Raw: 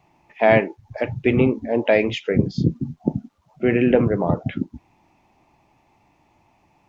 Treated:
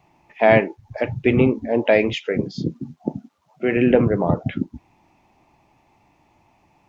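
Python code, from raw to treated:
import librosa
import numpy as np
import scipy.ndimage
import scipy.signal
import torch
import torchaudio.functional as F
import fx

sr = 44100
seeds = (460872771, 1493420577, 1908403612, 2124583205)

y = fx.highpass(x, sr, hz=340.0, slope=6, at=(2.13, 3.77))
y = y * librosa.db_to_amplitude(1.0)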